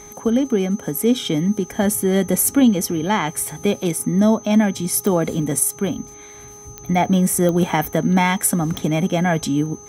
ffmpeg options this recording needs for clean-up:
-af "adeclick=t=4,bandreject=f=413.9:t=h:w=4,bandreject=f=827.8:t=h:w=4,bandreject=f=1.2417k:t=h:w=4,bandreject=f=6.2k:w=30"

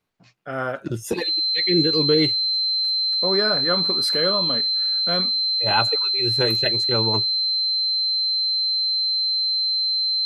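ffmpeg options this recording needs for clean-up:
-af "bandreject=f=4.1k:w=30"

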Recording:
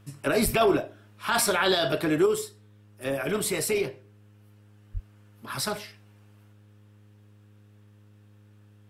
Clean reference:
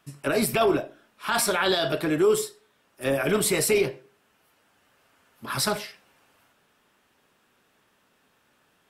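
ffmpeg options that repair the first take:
-filter_complex "[0:a]bandreject=f=103.9:t=h:w=4,bandreject=f=207.8:t=h:w=4,bandreject=f=311.7:t=h:w=4,bandreject=f=415.6:t=h:w=4,bandreject=f=519.5:t=h:w=4,asplit=3[a][b][c];[a]afade=t=out:st=0.44:d=0.02[d];[b]highpass=f=140:w=0.5412,highpass=f=140:w=1.3066,afade=t=in:st=0.44:d=0.02,afade=t=out:st=0.56:d=0.02[e];[c]afade=t=in:st=0.56:d=0.02[f];[d][e][f]amix=inputs=3:normalize=0,asplit=3[g][h][i];[g]afade=t=out:st=4.93:d=0.02[j];[h]highpass=f=140:w=0.5412,highpass=f=140:w=1.3066,afade=t=in:st=4.93:d=0.02,afade=t=out:st=5.05:d=0.02[k];[i]afade=t=in:st=5.05:d=0.02[l];[j][k][l]amix=inputs=3:normalize=0,asetnsamples=n=441:p=0,asendcmd='2.26 volume volume 4.5dB',volume=0dB"

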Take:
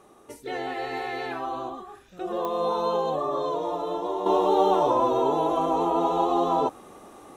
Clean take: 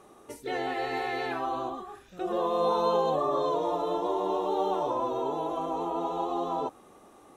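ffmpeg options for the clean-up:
-af "adeclick=t=4,asetnsamples=n=441:p=0,asendcmd='4.26 volume volume -7.5dB',volume=0dB"

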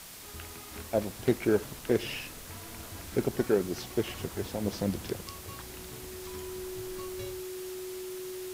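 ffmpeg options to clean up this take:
-af "bandreject=f=370:w=30,afwtdn=0.005"

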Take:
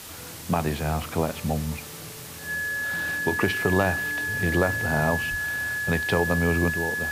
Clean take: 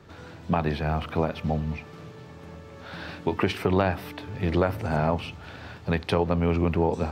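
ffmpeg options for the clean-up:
-filter_complex "[0:a]bandreject=f=1.7k:w=30,asplit=3[a][b][c];[a]afade=t=out:st=5.3:d=0.02[d];[b]highpass=f=140:w=0.5412,highpass=f=140:w=1.3066,afade=t=in:st=5.3:d=0.02,afade=t=out:st=5.42:d=0.02[e];[c]afade=t=in:st=5.42:d=0.02[f];[d][e][f]amix=inputs=3:normalize=0,afwtdn=0.01,asetnsamples=n=441:p=0,asendcmd='6.7 volume volume 7dB',volume=0dB"

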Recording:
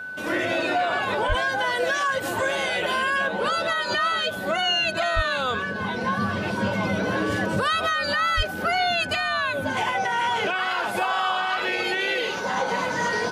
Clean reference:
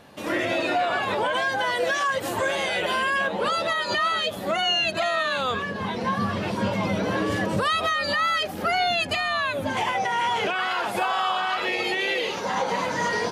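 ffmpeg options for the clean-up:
-filter_complex "[0:a]bandreject=f=1.5k:w=30,asplit=3[a][b][c];[a]afade=t=out:st=1.28:d=0.02[d];[b]highpass=f=140:w=0.5412,highpass=f=140:w=1.3066,afade=t=in:st=1.28:d=0.02,afade=t=out:st=1.4:d=0.02[e];[c]afade=t=in:st=1.4:d=0.02[f];[d][e][f]amix=inputs=3:normalize=0,asplit=3[g][h][i];[g]afade=t=out:st=5.15:d=0.02[j];[h]highpass=f=140:w=0.5412,highpass=f=140:w=1.3066,afade=t=in:st=5.15:d=0.02,afade=t=out:st=5.27:d=0.02[k];[i]afade=t=in:st=5.27:d=0.02[l];[j][k][l]amix=inputs=3:normalize=0,asplit=3[m][n][o];[m]afade=t=out:st=8.36:d=0.02[p];[n]highpass=f=140:w=0.5412,highpass=f=140:w=1.3066,afade=t=in:st=8.36:d=0.02,afade=t=out:st=8.48:d=0.02[q];[o]afade=t=in:st=8.48:d=0.02[r];[p][q][r]amix=inputs=3:normalize=0"

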